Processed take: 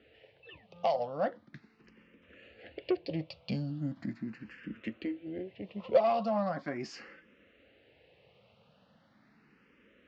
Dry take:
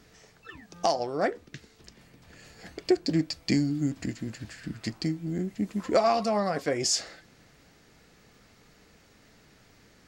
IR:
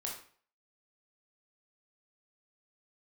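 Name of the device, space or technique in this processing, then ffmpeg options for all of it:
barber-pole phaser into a guitar amplifier: -filter_complex "[0:a]asplit=2[s0][s1];[s1]afreqshift=0.39[s2];[s0][s2]amix=inputs=2:normalize=1,asoftclip=type=tanh:threshold=0.133,highpass=82,equalizer=f=220:t=q:w=4:g=4,equalizer=f=540:t=q:w=4:g=10,equalizer=f=2800:t=q:w=4:g=8,lowpass=f=3600:w=0.5412,lowpass=f=3600:w=1.3066,volume=0.596"

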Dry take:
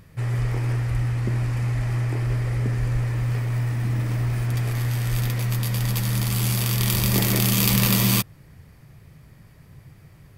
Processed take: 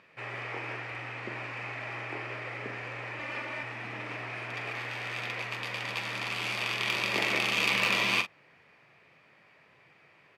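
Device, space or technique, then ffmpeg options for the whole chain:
megaphone: -filter_complex "[0:a]highpass=510,lowpass=3200,equalizer=f=2500:t=o:w=0.45:g=8,asoftclip=type=hard:threshold=0.178,asplit=2[s0][s1];[s1]adelay=43,volume=0.316[s2];[s0][s2]amix=inputs=2:normalize=0,asettb=1/sr,asplit=3[s3][s4][s5];[s3]atrim=end=3.194[s6];[s4]atrim=start=3.19:end=3.63,asetpts=PTS-STARTPTS,afade=t=in:d=0.004:c=qsin,afade=t=out:st=0.436:d=0.004:c=qsin,aecho=1:1:3.4:0.87,atrim=end_sample=19404[s7];[s5]atrim=start=3.626[s8];[s6][s7]acrossfade=d=0.004:c1=hsin:c2=qsin[s9];[s9][s8]acrossfade=d=0.004:c1=qsin:c2=hsin,volume=0.891"

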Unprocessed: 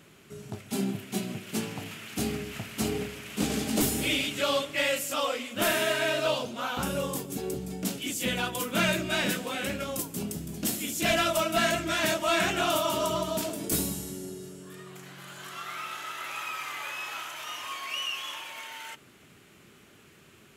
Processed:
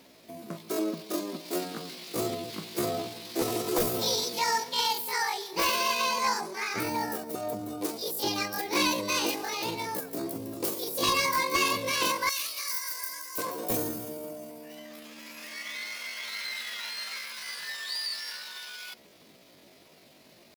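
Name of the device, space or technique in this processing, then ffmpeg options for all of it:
chipmunk voice: -filter_complex "[0:a]asetrate=72056,aresample=44100,atempo=0.612027,asettb=1/sr,asplit=3[s0][s1][s2];[s0]atrim=end=12.294[s3];[s1]atrim=start=12.29:end=13.38,asetpts=PTS-STARTPTS,afade=t=in:d=0.004:c=qsin,afade=t=out:st=1.086:d=0.004:c=qsin,aderivative[s4];[s2]atrim=start=13.376[s5];[s3][s4]acrossfade=d=0.004:c1=hsin:c2=qsin[s6];[s6][s5]acrossfade=d=0.004:c1=qsin:c2=hsin"

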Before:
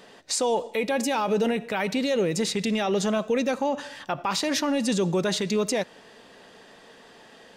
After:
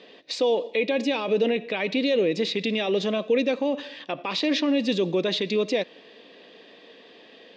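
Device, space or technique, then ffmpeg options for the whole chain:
kitchen radio: -af "highpass=220,equalizer=f=300:t=q:w=4:g=6,equalizer=f=490:t=q:w=4:g=4,equalizer=f=860:t=q:w=4:g=-8,equalizer=f=1400:t=q:w=4:g=-10,equalizer=f=2500:t=q:w=4:g=5,equalizer=f=3600:t=q:w=4:g=5,lowpass=f=4600:w=0.5412,lowpass=f=4600:w=1.3066"

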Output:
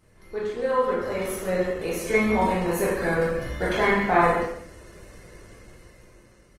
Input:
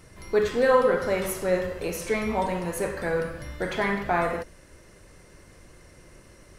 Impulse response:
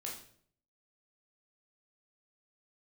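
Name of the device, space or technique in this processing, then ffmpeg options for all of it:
speakerphone in a meeting room: -filter_complex "[0:a]highshelf=f=4600:g=-2.5[s0];[1:a]atrim=start_sample=2205[s1];[s0][s1]afir=irnorm=-1:irlink=0,asplit=2[s2][s3];[s3]adelay=130,highpass=300,lowpass=3400,asoftclip=type=hard:threshold=0.141,volume=0.2[s4];[s2][s4]amix=inputs=2:normalize=0,dynaudnorm=f=270:g=9:m=4.47,volume=0.562" -ar 48000 -c:a libopus -b:a 20k

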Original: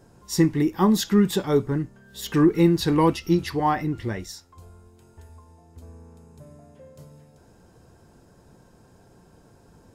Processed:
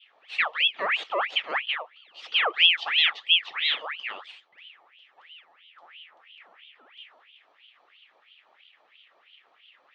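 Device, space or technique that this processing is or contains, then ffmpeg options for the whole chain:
voice changer toy: -af "adynamicequalizer=threshold=0.00708:dfrequency=2700:dqfactor=0.91:tfrequency=2700:tqfactor=0.91:attack=5:release=100:ratio=0.375:range=2:mode=cutabove:tftype=bell,aeval=exprs='val(0)*sin(2*PI*1900*n/s+1900*0.6/3*sin(2*PI*3*n/s))':c=same,highpass=590,equalizer=f=670:t=q:w=4:g=-3,equalizer=f=990:t=q:w=4:g=-9,equalizer=f=1500:t=q:w=4:g=-9,equalizer=f=2200:t=q:w=4:g=-3,equalizer=f=3300:t=q:w=4:g=6,lowpass=f=3800:w=0.5412,lowpass=f=3800:w=1.3066"

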